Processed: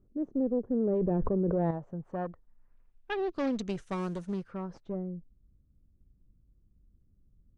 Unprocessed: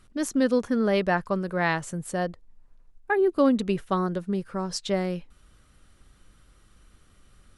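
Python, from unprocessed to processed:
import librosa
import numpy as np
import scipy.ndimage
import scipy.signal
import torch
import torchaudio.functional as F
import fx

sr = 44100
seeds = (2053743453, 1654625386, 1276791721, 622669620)

y = fx.law_mismatch(x, sr, coded='mu', at=(3.98, 4.42))
y = fx.peak_eq(y, sr, hz=6200.0, db=7.0, octaves=0.22)
y = fx.clip_asym(y, sr, top_db=-28.0, bottom_db=-14.5)
y = fx.filter_sweep_lowpass(y, sr, from_hz=10000.0, to_hz=240.0, start_s=4.2, end_s=5.15, q=0.75)
y = fx.low_shelf(y, sr, hz=460.0, db=3.0)
y = fx.filter_sweep_lowpass(y, sr, from_hz=440.0, to_hz=9100.0, start_s=1.45, end_s=3.92, q=1.8)
y = fx.env_flatten(y, sr, amount_pct=100, at=(0.71, 1.71))
y = y * librosa.db_to_amplitude(-9.0)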